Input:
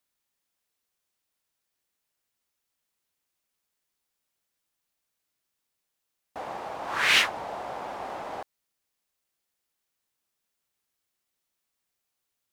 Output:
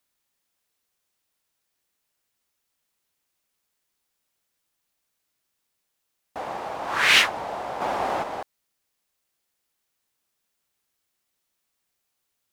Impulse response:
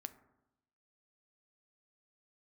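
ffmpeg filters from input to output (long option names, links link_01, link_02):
-filter_complex "[0:a]asplit=3[link_01][link_02][link_03];[link_01]afade=type=out:start_time=7.8:duration=0.02[link_04];[link_02]acontrast=59,afade=type=in:start_time=7.8:duration=0.02,afade=type=out:start_time=8.22:duration=0.02[link_05];[link_03]afade=type=in:start_time=8.22:duration=0.02[link_06];[link_04][link_05][link_06]amix=inputs=3:normalize=0,volume=4dB"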